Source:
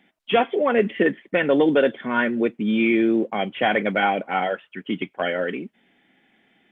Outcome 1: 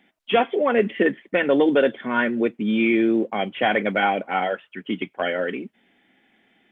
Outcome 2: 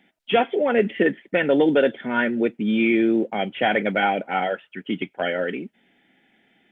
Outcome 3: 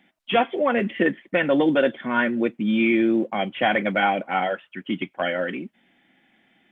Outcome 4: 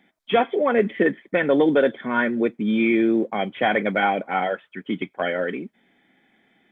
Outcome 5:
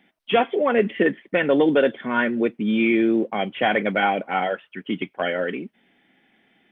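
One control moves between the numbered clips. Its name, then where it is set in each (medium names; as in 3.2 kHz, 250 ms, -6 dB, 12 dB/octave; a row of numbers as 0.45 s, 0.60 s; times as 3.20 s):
band-stop, frequency: 160 Hz, 1.1 kHz, 430 Hz, 2.8 kHz, 7.1 kHz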